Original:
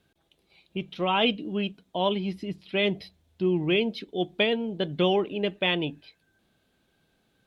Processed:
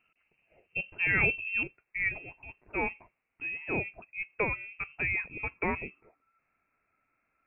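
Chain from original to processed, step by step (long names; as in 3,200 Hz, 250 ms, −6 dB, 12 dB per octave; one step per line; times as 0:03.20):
high-pass filter 120 Hz 12 dB per octave, from 0:01.63 620 Hz
voice inversion scrambler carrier 2,900 Hz
level −2 dB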